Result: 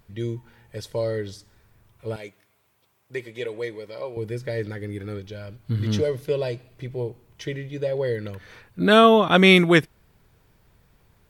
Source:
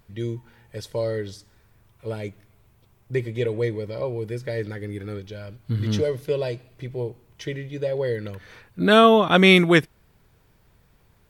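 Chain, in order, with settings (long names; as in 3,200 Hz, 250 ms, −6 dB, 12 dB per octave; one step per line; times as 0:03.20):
0:02.16–0:04.17: high-pass filter 720 Hz 6 dB per octave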